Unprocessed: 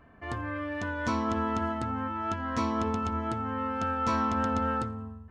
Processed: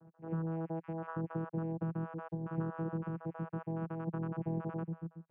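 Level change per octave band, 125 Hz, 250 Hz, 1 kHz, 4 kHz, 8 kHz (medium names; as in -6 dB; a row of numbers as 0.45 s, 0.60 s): -1.0 dB, -6.5 dB, -16.5 dB, under -25 dB, under -30 dB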